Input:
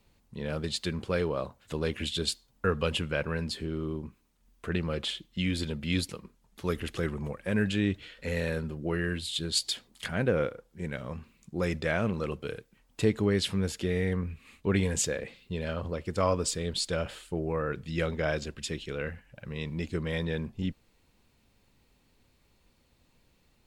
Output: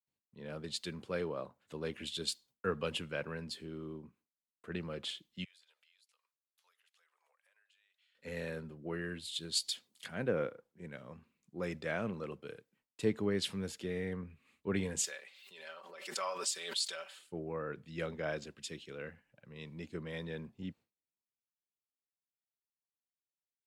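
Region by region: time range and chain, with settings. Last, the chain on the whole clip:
5.44–8.15 s: Bessel high-pass 1.1 kHz, order 8 + compression, threshold -53 dBFS
15.04–17.19 s: high-pass 860 Hz + comb 5.2 ms, depth 62% + swell ahead of each attack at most 43 dB/s
whole clip: gate with hold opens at -53 dBFS; high-pass 140 Hz 12 dB/octave; three bands expanded up and down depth 40%; trim -8.5 dB

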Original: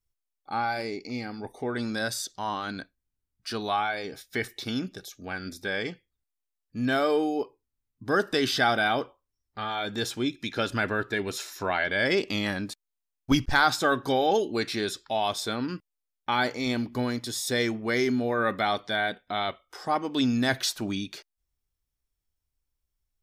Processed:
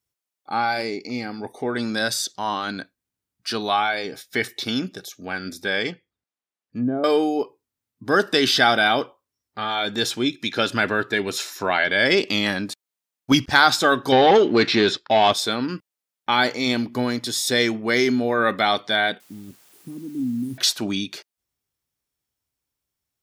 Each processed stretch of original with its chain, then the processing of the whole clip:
5.91–7.04 s: low-pass 2.8 kHz 6 dB/octave + low-pass that closes with the level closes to 460 Hz, closed at -24 dBFS
14.12–15.33 s: waveshaping leveller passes 2 + distance through air 160 m
19.20–20.58 s: elliptic band-stop 280–9800 Hz + compression 1.5:1, threshold -36 dBFS + word length cut 10-bit, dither triangular
whole clip: high-pass 130 Hz 12 dB/octave; dynamic bell 3.7 kHz, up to +4 dB, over -39 dBFS, Q 0.88; trim +5.5 dB

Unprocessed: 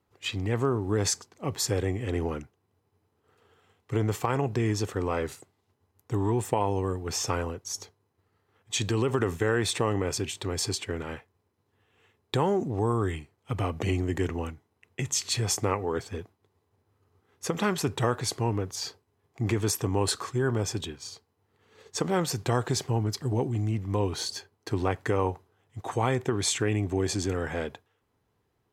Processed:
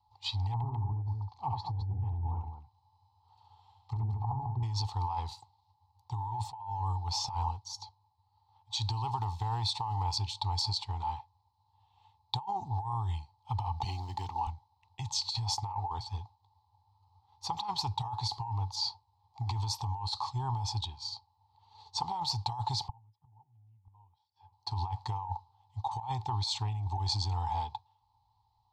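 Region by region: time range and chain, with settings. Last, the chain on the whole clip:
0.53–4.63 s: low-pass that closes with the level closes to 310 Hz, closed at -24 dBFS + multi-tap echo 69/211 ms -4.5/-8.5 dB
7.50–10.05 s: block-companded coder 7-bit + tremolo 2 Hz, depth 31%
13.84–14.47 s: short-mantissa float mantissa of 4-bit + high-pass 160 Hz
22.88–24.53 s: peaking EQ 150 Hz +7 dB 0.91 oct + inverted gate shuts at -24 dBFS, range -37 dB + Savitzky-Golay filter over 25 samples
whole clip: FFT filter 110 Hz 0 dB, 150 Hz -14 dB, 260 Hz -23 dB, 590 Hz -28 dB, 860 Hz +15 dB, 1.5 kHz -28 dB, 2.9 kHz -11 dB, 4.3 kHz +6 dB, 6.4 kHz -12 dB, 11 kHz -21 dB; compressor with a negative ratio -32 dBFS, ratio -1; trim -1 dB

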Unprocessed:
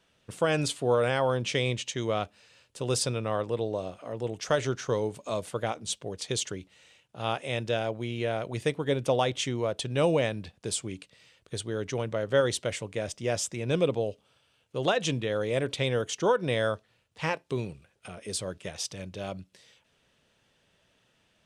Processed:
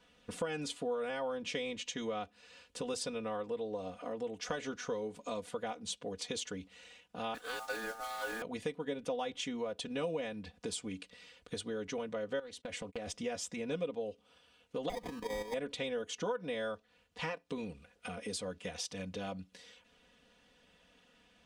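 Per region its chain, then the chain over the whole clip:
7.34–8.42 s: modulation noise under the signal 11 dB + peaking EQ 8.9 kHz +4 dB 0.87 oct + ring modulator 1 kHz
12.39–13.07 s: gate -44 dBFS, range -34 dB + compression 8:1, threshold -34 dBFS + loudspeaker Doppler distortion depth 0.34 ms
14.89–15.54 s: bass shelf 140 Hz -12 dB + sample-rate reducer 1.4 kHz + level held to a coarse grid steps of 10 dB
whole clip: treble shelf 8.4 kHz -9 dB; comb 4.1 ms, depth 95%; compression 3:1, threshold -39 dBFS

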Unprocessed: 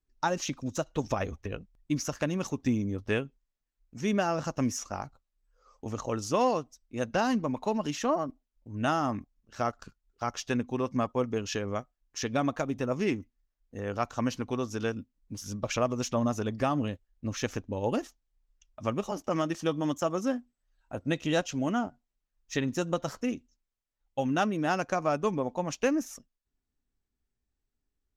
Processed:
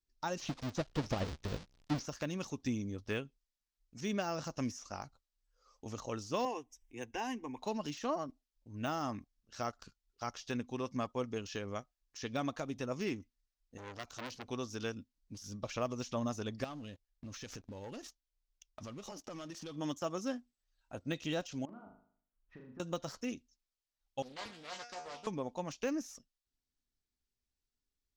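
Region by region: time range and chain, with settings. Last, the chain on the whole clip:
0.41–2.06 s: square wave that keeps the level + low-pass 6.6 kHz + tape noise reduction on one side only encoder only
6.45–7.59 s: static phaser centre 880 Hz, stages 8 + upward compressor, threshold -47 dBFS
13.77–14.48 s: treble shelf 3.8 kHz +3.5 dB + transformer saturation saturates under 2.9 kHz
16.64–19.76 s: waveshaping leveller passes 2 + compression, threshold -36 dBFS
21.65–22.80 s: low-pass 1.5 kHz 24 dB/octave + compression 10:1, threshold -41 dBFS + flutter echo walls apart 6.7 m, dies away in 0.55 s
24.22–25.27 s: peaking EQ 4.2 kHz +8.5 dB 2.4 oct + feedback comb 240 Hz, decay 0.41 s, mix 90% + loudspeaker Doppler distortion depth 0.96 ms
whole clip: peaking EQ 4.8 kHz +10.5 dB 1.6 oct; de-esser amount 90%; trim -8.5 dB

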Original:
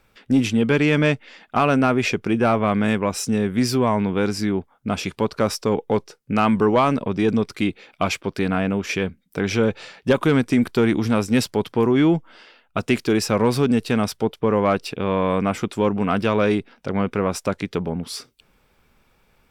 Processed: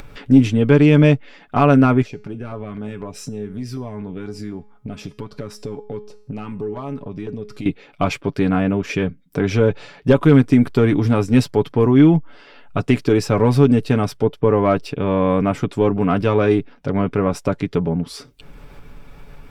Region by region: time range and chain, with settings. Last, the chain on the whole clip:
2.02–7.66 s: compression 2:1, threshold -28 dBFS + LFO notch saw down 4 Hz 430–3100 Hz + feedback comb 210 Hz, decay 0.43 s
whole clip: tilt EQ -2 dB/octave; comb 7 ms, depth 50%; upward compressor, threshold -25 dBFS

